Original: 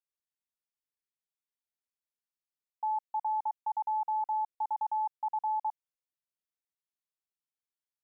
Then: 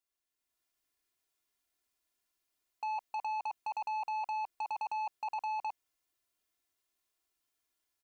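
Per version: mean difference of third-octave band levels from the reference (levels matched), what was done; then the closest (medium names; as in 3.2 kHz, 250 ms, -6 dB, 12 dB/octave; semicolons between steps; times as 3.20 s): 5.5 dB: comb 2.9 ms, depth 64%; level rider gain up to 7 dB; saturation -35.5 dBFS, distortion -12 dB; trim +2.5 dB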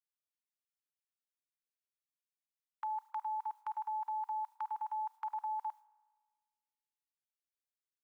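3.0 dB: gate with hold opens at -31 dBFS; inverse Chebyshev high-pass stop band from 670 Hz, stop band 40 dB; spring tank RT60 1.6 s, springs 35 ms, chirp 70 ms, DRR 18.5 dB; trim +14 dB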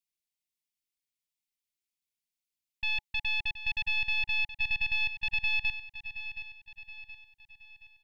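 13.5 dB: tracing distortion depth 0.49 ms; FFT filter 370 Hz 0 dB, 570 Hz -28 dB, 850 Hz -11 dB, 1.3 kHz -23 dB, 2.1 kHz +4 dB; on a send: feedback delay 723 ms, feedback 46%, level -12 dB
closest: second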